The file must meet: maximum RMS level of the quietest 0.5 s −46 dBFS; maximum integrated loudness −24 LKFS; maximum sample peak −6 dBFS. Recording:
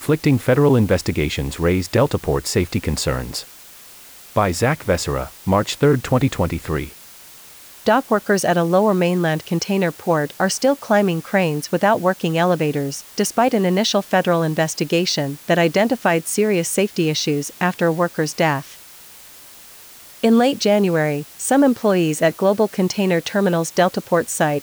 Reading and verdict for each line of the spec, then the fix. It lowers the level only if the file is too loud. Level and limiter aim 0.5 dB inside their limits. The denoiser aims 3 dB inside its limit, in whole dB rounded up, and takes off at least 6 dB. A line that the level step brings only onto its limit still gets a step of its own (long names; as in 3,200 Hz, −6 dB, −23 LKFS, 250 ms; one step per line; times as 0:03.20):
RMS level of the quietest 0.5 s −42 dBFS: out of spec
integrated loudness −19.0 LKFS: out of spec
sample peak −5.5 dBFS: out of spec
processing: level −5.5 dB